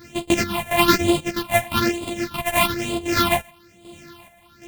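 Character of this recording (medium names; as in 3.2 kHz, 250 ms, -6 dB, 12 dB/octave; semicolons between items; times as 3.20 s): a buzz of ramps at a fixed pitch in blocks of 128 samples; phasing stages 6, 1.1 Hz, lowest notch 330–1600 Hz; chopped level 1.3 Hz, depth 60%, duty 55%; a shimmering, thickened sound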